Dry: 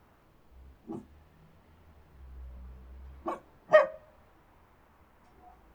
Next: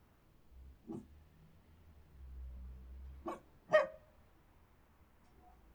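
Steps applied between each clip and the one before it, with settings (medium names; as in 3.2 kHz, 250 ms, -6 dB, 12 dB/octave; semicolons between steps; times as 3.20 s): peaking EQ 900 Hz -7 dB 2.9 oct; trim -3 dB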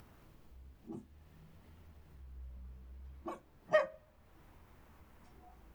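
upward compressor, threshold -51 dBFS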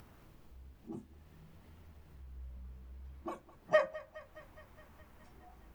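thinning echo 208 ms, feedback 74%, high-pass 420 Hz, level -18.5 dB; trim +1.5 dB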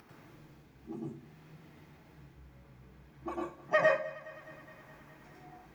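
reverberation RT60 0.40 s, pre-delay 92 ms, DRR -1 dB; trim -2.5 dB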